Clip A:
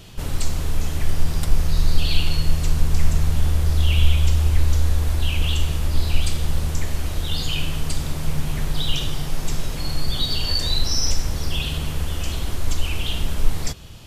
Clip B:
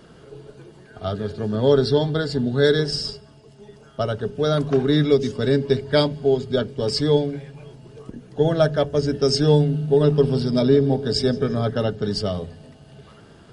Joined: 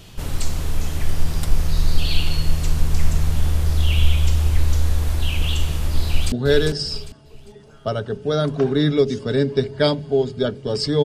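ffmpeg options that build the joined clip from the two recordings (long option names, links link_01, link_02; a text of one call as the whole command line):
ffmpeg -i cue0.wav -i cue1.wav -filter_complex "[0:a]apad=whole_dur=11.04,atrim=end=11.04,atrim=end=6.322[link_01];[1:a]atrim=start=2.448:end=7.17[link_02];[link_01][link_02]acrossfade=duration=0.004:curve1=hsin:curve2=hsin,asplit=2[link_03][link_04];[link_04]afade=type=in:start_time=6.05:duration=0.01,afade=type=out:start_time=6.32:duration=0.01,aecho=0:1:400|800|1200|1600:0.530884|0.159265|0.0477796|0.0143339[link_05];[link_03][link_05]amix=inputs=2:normalize=0" out.wav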